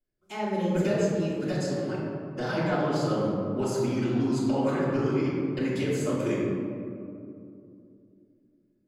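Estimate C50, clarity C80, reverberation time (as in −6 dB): −1.5 dB, 0.5 dB, 2.6 s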